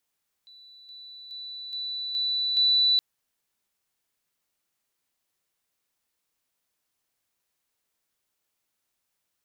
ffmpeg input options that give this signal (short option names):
-f lavfi -i "aevalsrc='pow(10,(-48+6*floor(t/0.42))/20)*sin(2*PI*3970*t)':d=2.52:s=44100"